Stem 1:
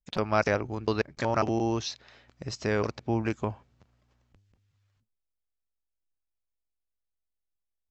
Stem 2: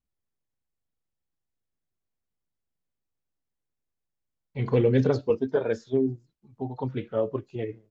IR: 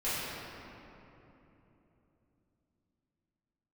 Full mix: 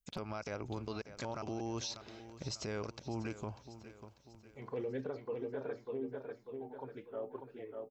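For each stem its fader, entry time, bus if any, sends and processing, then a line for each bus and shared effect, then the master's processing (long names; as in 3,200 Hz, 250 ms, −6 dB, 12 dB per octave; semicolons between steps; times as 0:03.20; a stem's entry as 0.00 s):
−3.0 dB, 0.00 s, no send, echo send −16.5 dB, high-shelf EQ 6,700 Hz +10 dB; notch filter 1,800 Hz, Q 7.6; downward compressor 6 to 1, threshold −30 dBFS, peak gain reduction 11 dB
−12.0 dB, 0.00 s, no send, echo send −5.5 dB, resonant band-pass 920 Hz, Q 0.56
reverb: not used
echo: repeating echo 594 ms, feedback 46%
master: brickwall limiter −30.5 dBFS, peak gain reduction 10.5 dB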